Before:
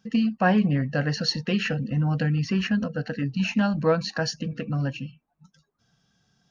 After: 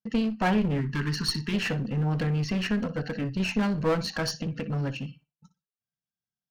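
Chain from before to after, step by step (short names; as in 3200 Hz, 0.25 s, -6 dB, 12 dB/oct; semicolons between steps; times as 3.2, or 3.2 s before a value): gate -52 dBFS, range -32 dB; flutter echo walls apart 10.3 m, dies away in 0.23 s; one-sided clip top -29 dBFS; spectral gain 0.81–1.54, 440–880 Hz -24 dB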